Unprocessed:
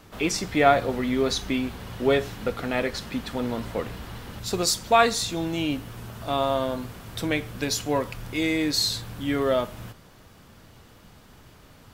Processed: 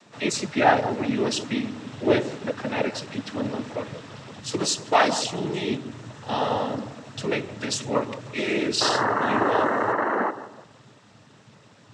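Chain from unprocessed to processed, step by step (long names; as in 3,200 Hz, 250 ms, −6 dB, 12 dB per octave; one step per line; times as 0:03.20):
sound drawn into the spectrogram noise, 0:08.80–0:10.30, 250–1,500 Hz −23 dBFS
delay with a low-pass on its return 168 ms, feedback 35%, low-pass 1,200 Hz, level −12.5 dB
cochlear-implant simulation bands 12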